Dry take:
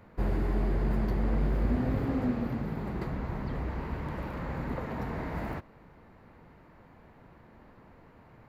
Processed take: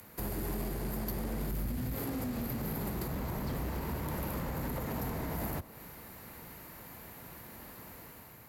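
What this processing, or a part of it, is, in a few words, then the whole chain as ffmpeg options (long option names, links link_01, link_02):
FM broadcast chain: -filter_complex "[0:a]asplit=3[link_01][link_02][link_03];[link_01]afade=type=out:start_time=1.49:duration=0.02[link_04];[link_02]asubboost=boost=11.5:cutoff=180,afade=type=in:start_time=1.49:duration=0.02,afade=type=out:start_time=1.92:duration=0.02[link_05];[link_03]afade=type=in:start_time=1.92:duration=0.02[link_06];[link_04][link_05][link_06]amix=inputs=3:normalize=0,highpass=40,dynaudnorm=framelen=140:gausssize=7:maxgain=5dB,acrossover=split=87|260|1100[link_07][link_08][link_09][link_10];[link_07]acompressor=threshold=-35dB:ratio=4[link_11];[link_08]acompressor=threshold=-34dB:ratio=4[link_12];[link_09]acompressor=threshold=-36dB:ratio=4[link_13];[link_10]acompressor=threshold=-53dB:ratio=4[link_14];[link_11][link_12][link_13][link_14]amix=inputs=4:normalize=0,aemphasis=mode=production:type=75fm,alimiter=level_in=2.5dB:limit=-24dB:level=0:latency=1:release=52,volume=-2.5dB,asoftclip=type=hard:threshold=-30.5dB,lowpass=frequency=15000:width=0.5412,lowpass=frequency=15000:width=1.3066,aemphasis=mode=production:type=75fm"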